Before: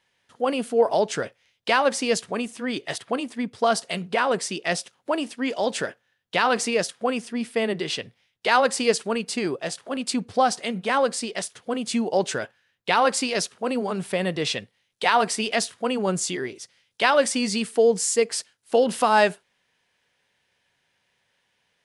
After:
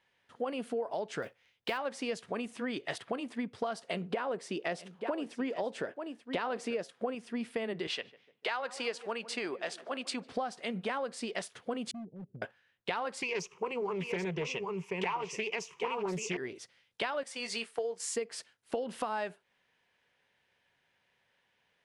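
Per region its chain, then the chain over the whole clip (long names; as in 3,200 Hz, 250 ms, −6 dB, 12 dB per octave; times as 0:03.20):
0:01.22–0:01.78: notch filter 600 Hz + floating-point word with a short mantissa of 2 bits
0:03.88–0:07.15: parametric band 400 Hz +6.5 dB 2.4 octaves + single-tap delay 885 ms −16 dB
0:07.87–0:10.32: meter weighting curve A + feedback echo with a low-pass in the loop 149 ms, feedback 60%, low-pass 1,200 Hz, level −19 dB
0:11.91–0:12.42: transistor ladder low-pass 220 Hz, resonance 25% + hard clipping −36.5 dBFS
0:13.22–0:16.37: EQ curve with evenly spaced ripples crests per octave 0.76, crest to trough 17 dB + single-tap delay 783 ms −8.5 dB + highs frequency-modulated by the lows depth 0.37 ms
0:17.23–0:18.16: high-pass filter 540 Hz + noise gate −33 dBFS, range −7 dB + double-tracking delay 22 ms −11.5 dB
whole clip: bass and treble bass −2 dB, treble −9 dB; downward compressor 10 to 1, threshold −29 dBFS; level −2.5 dB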